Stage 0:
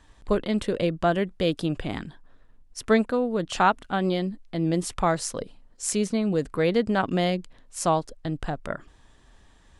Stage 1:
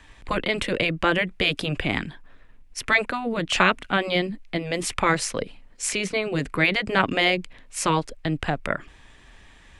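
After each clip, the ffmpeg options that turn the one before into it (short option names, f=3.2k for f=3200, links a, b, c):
-filter_complex "[0:a]afftfilt=real='re*lt(hypot(re,im),0.447)':imag='im*lt(hypot(re,im),0.447)':win_size=1024:overlap=0.75,equalizer=f=2.3k:w=1.6:g=11,acrossover=split=290|880|5000[a][b][c][d];[d]alimiter=limit=-21dB:level=0:latency=1:release=361[e];[a][b][c][e]amix=inputs=4:normalize=0,volume=4dB"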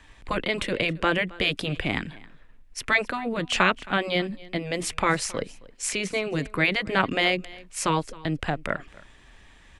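-af "aecho=1:1:269:0.0841,volume=-2dB"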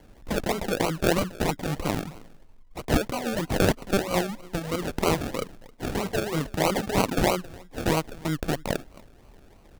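-af "acrusher=samples=35:mix=1:aa=0.000001:lfo=1:lforange=21:lforate=3.1"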